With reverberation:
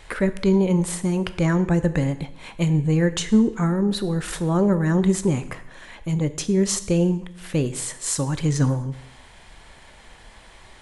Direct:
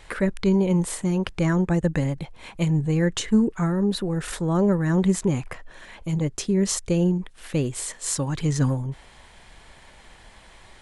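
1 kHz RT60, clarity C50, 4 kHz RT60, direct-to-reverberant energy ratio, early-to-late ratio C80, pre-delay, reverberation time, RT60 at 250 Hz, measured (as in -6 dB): 0.80 s, 14.5 dB, 0.75 s, 11.5 dB, 16.5 dB, 6 ms, 0.80 s, 0.85 s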